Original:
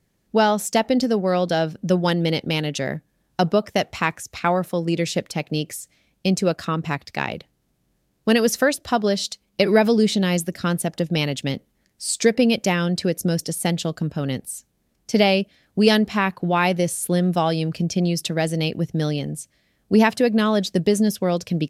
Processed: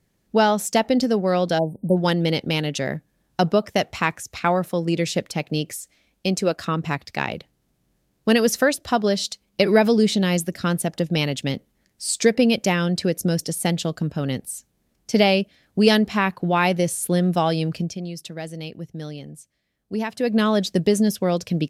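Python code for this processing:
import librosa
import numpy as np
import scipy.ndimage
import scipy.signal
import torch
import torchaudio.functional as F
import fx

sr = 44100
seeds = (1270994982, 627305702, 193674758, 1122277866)

y = fx.spec_erase(x, sr, start_s=1.59, length_s=0.38, low_hz=1000.0, high_hz=8100.0)
y = fx.peak_eq(y, sr, hz=130.0, db=-10.0, octaves=0.77, at=(5.74, 6.61))
y = fx.edit(y, sr, fx.fade_down_up(start_s=17.74, length_s=2.63, db=-10.5, fade_s=0.24), tone=tone)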